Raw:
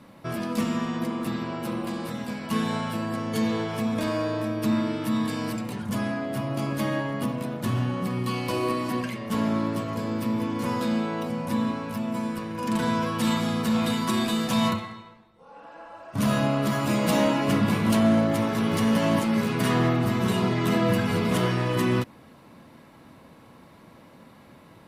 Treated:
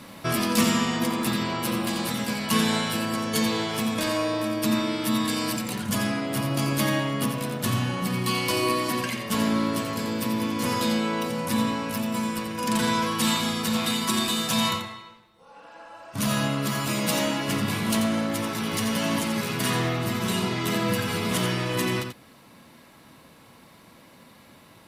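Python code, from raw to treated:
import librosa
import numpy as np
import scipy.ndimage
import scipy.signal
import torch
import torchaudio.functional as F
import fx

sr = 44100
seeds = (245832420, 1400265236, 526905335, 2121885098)

p1 = x + fx.echo_single(x, sr, ms=87, db=-8.0, dry=0)
p2 = fx.rider(p1, sr, range_db=10, speed_s=2.0)
p3 = fx.high_shelf(p2, sr, hz=2100.0, db=11.0)
y = p3 * librosa.db_to_amplitude(-2.0)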